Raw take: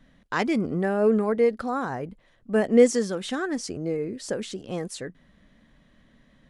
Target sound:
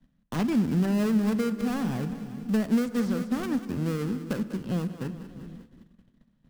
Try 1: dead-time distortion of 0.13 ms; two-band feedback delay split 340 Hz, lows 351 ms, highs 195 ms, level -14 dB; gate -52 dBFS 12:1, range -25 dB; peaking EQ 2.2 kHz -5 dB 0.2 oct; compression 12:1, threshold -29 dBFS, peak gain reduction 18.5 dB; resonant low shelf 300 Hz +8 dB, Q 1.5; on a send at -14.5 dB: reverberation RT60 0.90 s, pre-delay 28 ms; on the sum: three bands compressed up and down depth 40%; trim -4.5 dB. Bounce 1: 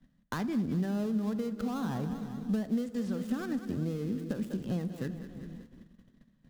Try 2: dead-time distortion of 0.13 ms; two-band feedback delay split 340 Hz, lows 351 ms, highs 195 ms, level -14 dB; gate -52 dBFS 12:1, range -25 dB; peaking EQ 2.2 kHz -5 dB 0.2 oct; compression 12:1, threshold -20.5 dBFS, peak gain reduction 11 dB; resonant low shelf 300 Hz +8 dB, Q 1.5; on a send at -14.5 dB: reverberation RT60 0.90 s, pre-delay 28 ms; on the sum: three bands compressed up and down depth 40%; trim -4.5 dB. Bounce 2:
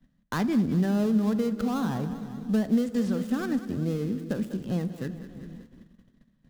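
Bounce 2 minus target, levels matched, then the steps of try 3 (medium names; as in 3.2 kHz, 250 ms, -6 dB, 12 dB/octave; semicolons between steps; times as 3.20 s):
dead-time distortion: distortion -8 dB
dead-time distortion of 0.35 ms; two-band feedback delay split 340 Hz, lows 351 ms, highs 195 ms, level -14 dB; gate -52 dBFS 12:1, range -25 dB; peaking EQ 2.2 kHz -5 dB 0.2 oct; compression 12:1, threshold -20.5 dBFS, peak gain reduction 11 dB; resonant low shelf 300 Hz +8 dB, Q 1.5; on a send at -14.5 dB: reverberation RT60 0.90 s, pre-delay 28 ms; on the sum: three bands compressed up and down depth 40%; trim -4.5 dB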